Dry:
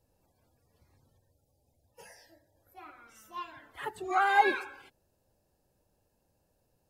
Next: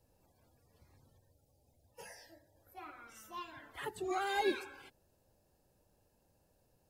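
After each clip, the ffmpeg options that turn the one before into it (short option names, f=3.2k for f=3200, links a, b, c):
-filter_complex "[0:a]acrossover=split=460|3000[a][b][c];[b]acompressor=threshold=-48dB:ratio=2.5[d];[a][d][c]amix=inputs=3:normalize=0,volume=1dB"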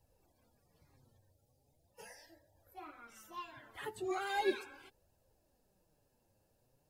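-af "flanger=delay=1:depth=8.7:regen=42:speed=0.39:shape=triangular,volume=2dB"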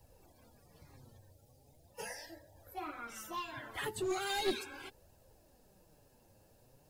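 -filter_complex "[0:a]acrossover=split=280|3000[a][b][c];[b]acompressor=threshold=-49dB:ratio=4[d];[a][d][c]amix=inputs=3:normalize=0,aeval=exprs='clip(val(0),-1,0.0075)':c=same,volume=10dB"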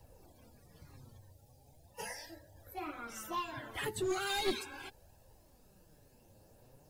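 -af "aphaser=in_gain=1:out_gain=1:delay=1.3:decay=0.28:speed=0.3:type=triangular,volume=1dB"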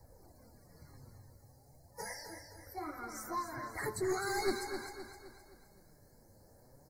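-filter_complex "[0:a]asuperstop=centerf=3000:order=20:qfactor=1.7,asplit=2[a][b];[b]aecho=0:1:259|518|777|1036|1295:0.398|0.179|0.0806|0.0363|0.0163[c];[a][c]amix=inputs=2:normalize=0"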